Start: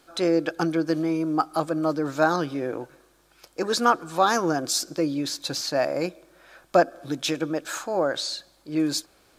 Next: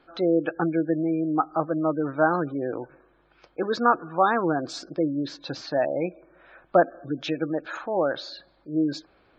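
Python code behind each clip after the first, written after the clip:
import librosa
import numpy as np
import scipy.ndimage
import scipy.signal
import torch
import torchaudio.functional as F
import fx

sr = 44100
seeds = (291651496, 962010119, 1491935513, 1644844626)

y = scipy.signal.sosfilt(scipy.signal.butter(2, 2800.0, 'lowpass', fs=sr, output='sos'), x)
y = fx.spec_gate(y, sr, threshold_db=-25, keep='strong')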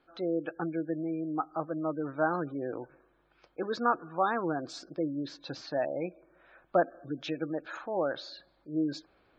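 y = fx.rider(x, sr, range_db=4, speed_s=2.0)
y = F.gain(torch.from_numpy(y), -8.0).numpy()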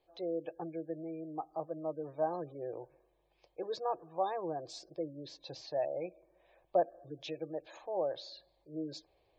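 y = fx.fixed_phaser(x, sr, hz=580.0, stages=4)
y = F.gain(torch.from_numpy(y), -2.5).numpy()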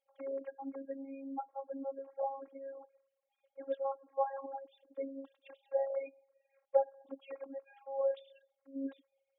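y = fx.sine_speech(x, sr)
y = fx.robotise(y, sr, hz=272.0)
y = F.gain(torch.from_numpy(y), 1.5).numpy()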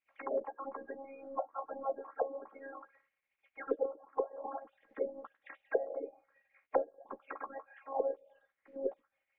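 y = fx.spec_clip(x, sr, under_db=28)
y = fx.doubler(y, sr, ms=13.0, db=-8.0)
y = fx.envelope_lowpass(y, sr, base_hz=410.0, top_hz=2300.0, q=5.0, full_db=-32.5, direction='down')
y = F.gain(torch.from_numpy(y), -4.0).numpy()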